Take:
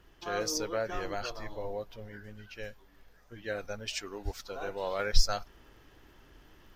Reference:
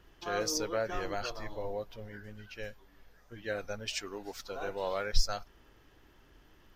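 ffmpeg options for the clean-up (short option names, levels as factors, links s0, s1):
-filter_complex "[0:a]adeclick=t=4,asplit=3[s0][s1][s2];[s0]afade=t=out:st=4.24:d=0.02[s3];[s1]highpass=f=140:w=0.5412,highpass=f=140:w=1.3066,afade=t=in:st=4.24:d=0.02,afade=t=out:st=4.36:d=0.02[s4];[s2]afade=t=in:st=4.36:d=0.02[s5];[s3][s4][s5]amix=inputs=3:normalize=0,asetnsamples=n=441:p=0,asendcmd='4.99 volume volume -3.5dB',volume=1"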